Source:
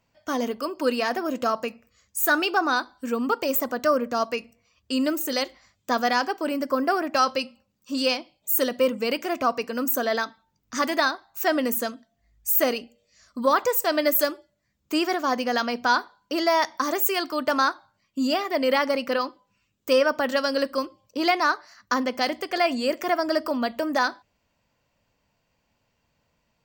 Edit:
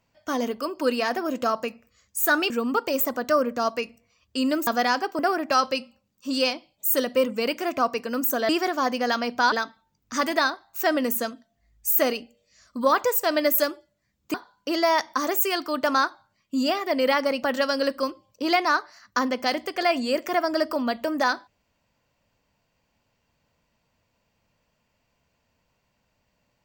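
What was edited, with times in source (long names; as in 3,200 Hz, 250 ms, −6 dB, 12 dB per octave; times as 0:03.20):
0:02.50–0:03.05: remove
0:05.22–0:05.93: remove
0:06.45–0:06.83: remove
0:14.95–0:15.98: move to 0:10.13
0:19.07–0:20.18: remove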